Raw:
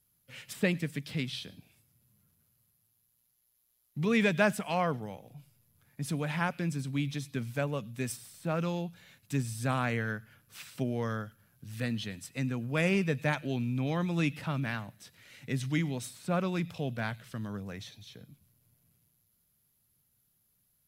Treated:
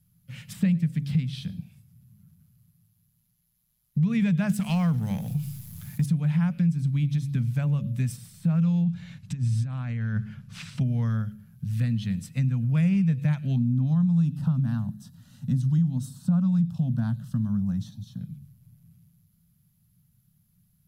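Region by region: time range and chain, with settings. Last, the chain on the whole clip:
4.49–6.06 G.711 law mismatch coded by A + high shelf 3200 Hz +10.5 dB + fast leveller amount 50%
8.84–10.81 LPF 6700 Hz + negative-ratio compressor -39 dBFS
13.56–18.21 bell 250 Hz +14 dB 0.49 oct + fixed phaser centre 920 Hz, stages 4
whole clip: resonant low shelf 250 Hz +12.5 dB, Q 3; de-hum 70.35 Hz, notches 8; compressor 3:1, threshold -23 dBFS

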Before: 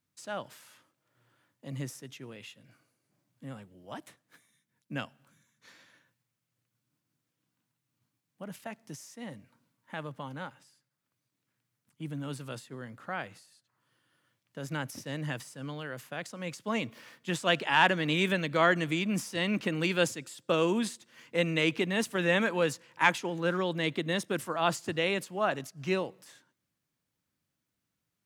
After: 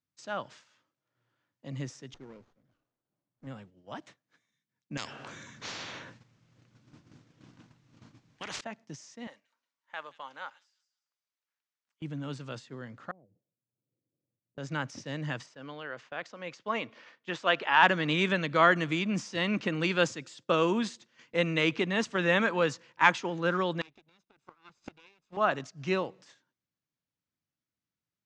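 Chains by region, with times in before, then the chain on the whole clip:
2.14–3.47 brick-wall FIR band-stop 1900–4800 Hz + low shelf 240 Hz -5.5 dB + running maximum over 17 samples
4.97–8.61 tilt -2 dB/oct + spectral compressor 10:1
9.27–12.02 HPF 730 Hz + thin delay 0.179 s, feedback 30%, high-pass 4800 Hz, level -6.5 dB
13.11–14.58 inverse Chebyshev low-pass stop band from 1400 Hz, stop band 50 dB + compressor 20:1, threshold -54 dBFS
15.46–17.83 LPF 7300 Hz + tone controls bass -12 dB, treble -7 dB
23.81–25.37 minimum comb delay 0.79 ms + HPF 120 Hz 6 dB/oct + flipped gate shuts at -27 dBFS, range -25 dB
whole clip: gate -53 dBFS, range -9 dB; steep low-pass 6900 Hz 36 dB/oct; dynamic EQ 1200 Hz, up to +5 dB, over -44 dBFS, Q 1.8

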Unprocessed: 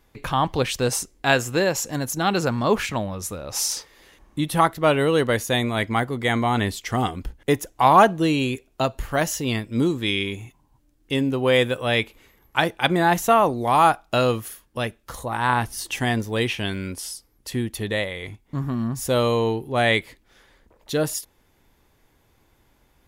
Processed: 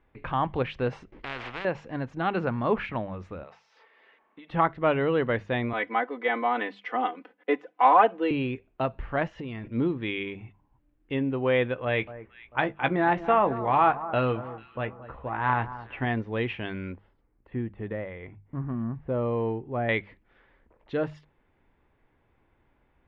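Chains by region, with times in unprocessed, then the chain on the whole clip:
1.12–1.65 median filter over 5 samples + spectral compressor 10:1
3.43–4.5 HPF 490 Hz + compressor 10:1, threshold -36 dBFS + comb 4.5 ms, depth 41%
5.73–8.31 de-esser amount 55% + HPF 320 Hz 24 dB/oct + comb 4 ms, depth 80%
9.26–9.68 compressor, threshold -27 dBFS + transient shaper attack +3 dB, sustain +9 dB
11.85–16.06 low-pass opened by the level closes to 1100 Hz, open at -14 dBFS + doubler 15 ms -9 dB + echo with dull and thin repeats by turns 0.222 s, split 1500 Hz, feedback 57%, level -14 dB
16.94–19.89 de-esser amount 95% + air absorption 460 m
whole clip: LPF 2600 Hz 24 dB/oct; notches 50/100/150/200 Hz; gain -5 dB

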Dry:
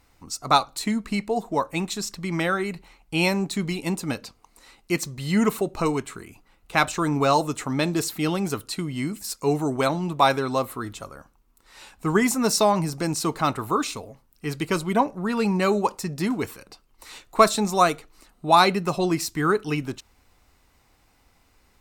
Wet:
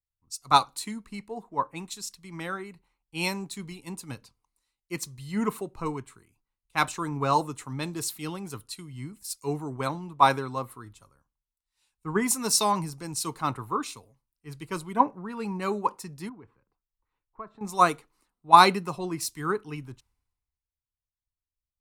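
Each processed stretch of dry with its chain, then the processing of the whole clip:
16.29–17.61 LPF 1600 Hz + compressor 2:1, threshold -33 dBFS
whole clip: thirty-one-band EQ 125 Hz +6 dB, 630 Hz -6 dB, 1000 Hz +6 dB, 10000 Hz +7 dB; three-band expander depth 100%; gain -9 dB

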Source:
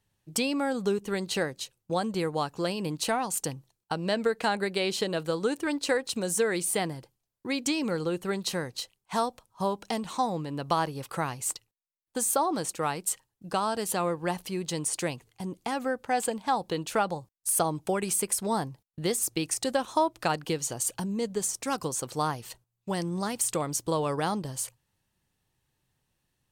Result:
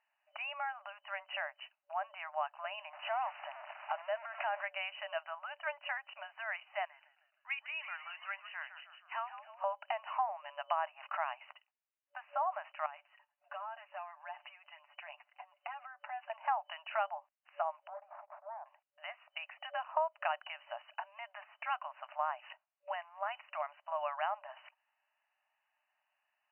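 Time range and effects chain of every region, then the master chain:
2.93–4.64 zero-crossing step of -31.5 dBFS + LPF 1900 Hz 6 dB/oct + compressor 2.5:1, threshold -31 dBFS
6.85–9.64 Bessel high-pass 2100 Hz + frequency-shifting echo 0.156 s, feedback 51%, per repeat -130 Hz, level -12 dB
12.86–16.3 compressor 12:1, threshold -41 dBFS + comb 6.9 ms, depth 61%
17.87–18.66 minimum comb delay 0.35 ms + inverse Chebyshev low-pass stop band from 6100 Hz, stop band 80 dB + compressor 8:1, threshold -39 dBFS
20.94–21.83 de-esser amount 55% + HPF 620 Hz
whole clip: compressor 3:1, threshold -33 dBFS; FFT band-pass 580–3000 Hz; gain +2 dB

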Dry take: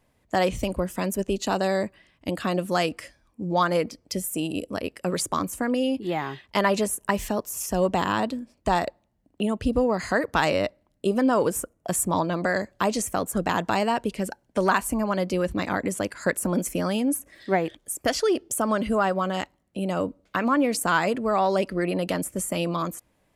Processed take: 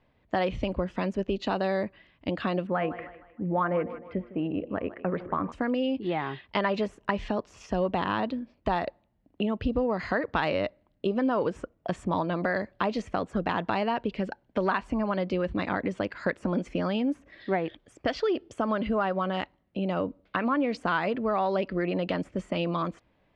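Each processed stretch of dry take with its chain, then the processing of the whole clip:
2.67–5.52 LPF 2100 Hz 24 dB/oct + de-hum 118.1 Hz, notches 10 + thinning echo 0.155 s, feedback 41%, high-pass 200 Hz, level -16 dB
whole clip: LPF 3900 Hz 24 dB/oct; compressor 2:1, threshold -26 dBFS

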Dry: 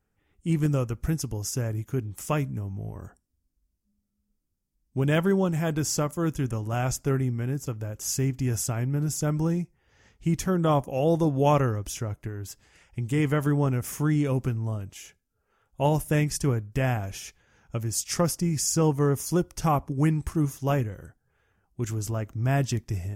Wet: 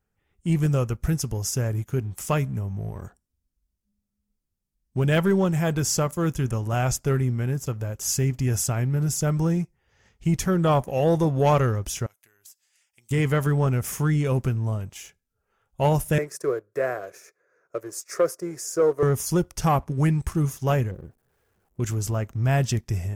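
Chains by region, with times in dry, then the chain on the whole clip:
12.06–13.11 differentiator + compressor 16:1, threshold -45 dBFS
16.18–19.03 Bessel high-pass 400 Hz, order 4 + tilt shelf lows +9 dB, about 1400 Hz + fixed phaser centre 840 Hz, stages 6
20.91–21.8 switching spikes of -36 dBFS + EQ curve 110 Hz 0 dB, 330 Hz +5 dB, 3900 Hz -27 dB
whole clip: bell 290 Hz -8.5 dB 0.24 oct; sample leveller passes 1

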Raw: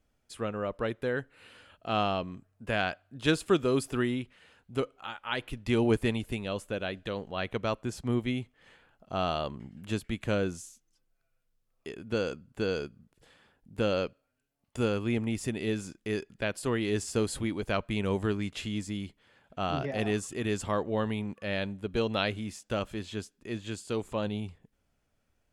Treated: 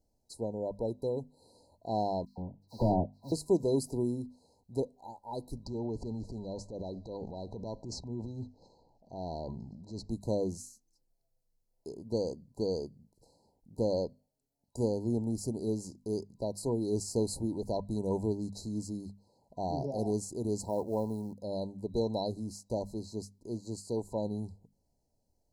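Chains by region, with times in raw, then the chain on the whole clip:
2.25–3.32 half-waves squared off + air absorption 420 m + dispersion lows, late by 0.127 s, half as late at 1900 Hz
5.64–10.1 LPF 6100 Hz 24 dB/oct + compressor 4:1, threshold -31 dBFS + transient shaper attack -7 dB, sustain +8 dB
20.61–21.43 low shelf 170 Hz -3.5 dB + short-mantissa float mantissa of 4-bit
whole clip: notches 50/100/150/200/250 Hz; FFT band-reject 1000–3900 Hz; gain -1.5 dB

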